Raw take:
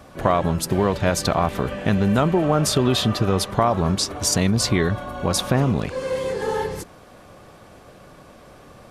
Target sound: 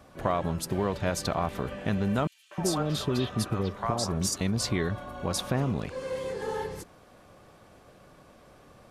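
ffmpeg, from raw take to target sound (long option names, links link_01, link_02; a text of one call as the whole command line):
ffmpeg -i in.wav -filter_complex "[0:a]asettb=1/sr,asplit=3[link_01][link_02][link_03];[link_01]atrim=end=2.274[link_04];[link_02]atrim=start=2.27:end=4.41,asetpts=PTS-STARTPTS,afade=type=in:duration=0.004:curve=qsin,afade=type=out:start_time=2.136:duration=0.004:curve=qsin,acrossover=split=670|3300[link_05][link_06][link_07];[link_06]adelay=240[link_08];[link_05]adelay=310[link_09];[link_09][link_08][link_07]amix=inputs=3:normalize=0,atrim=end_sample=94374[link_10];[link_03]atrim=start=4.406[link_11];[link_04][link_10]acrossfade=duration=0.004:curve1=hsin:curve2=qsin[link_12];[link_12][link_11]acrossfade=duration=0.004:curve1=qsin:curve2=hsin,volume=-8.5dB" out.wav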